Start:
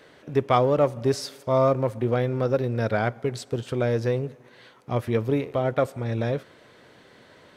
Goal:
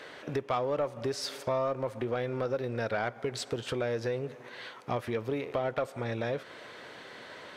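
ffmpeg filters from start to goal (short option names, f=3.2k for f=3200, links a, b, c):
-filter_complex "[0:a]acompressor=threshold=-31dB:ratio=6,asplit=2[a][b];[b]highpass=f=720:p=1,volume=12dB,asoftclip=type=tanh:threshold=-20dB[c];[a][c]amix=inputs=2:normalize=0,lowpass=f=4.9k:p=1,volume=-6dB,volume=1dB"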